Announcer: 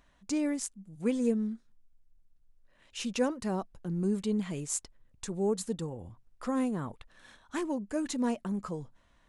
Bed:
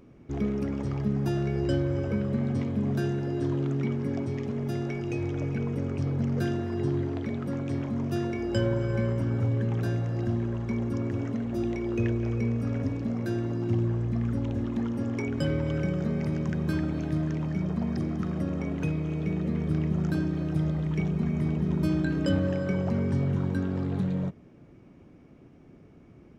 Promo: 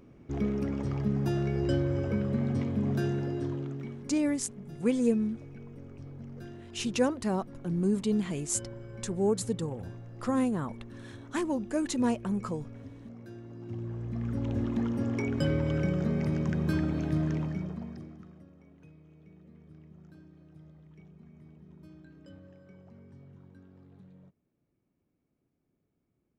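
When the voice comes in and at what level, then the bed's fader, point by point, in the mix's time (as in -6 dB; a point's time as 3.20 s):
3.80 s, +2.5 dB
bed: 3.23 s -1.5 dB
4.22 s -16.5 dB
13.44 s -16.5 dB
14.57 s -0.5 dB
17.37 s -0.5 dB
18.53 s -26 dB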